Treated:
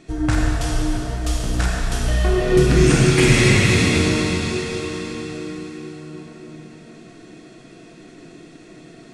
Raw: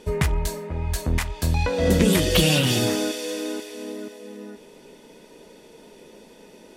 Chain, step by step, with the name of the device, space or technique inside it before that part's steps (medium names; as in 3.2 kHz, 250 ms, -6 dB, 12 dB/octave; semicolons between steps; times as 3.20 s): slowed and reverbed (tape speed -26%; reverberation RT60 3.6 s, pre-delay 29 ms, DRR -4 dB); trim -1 dB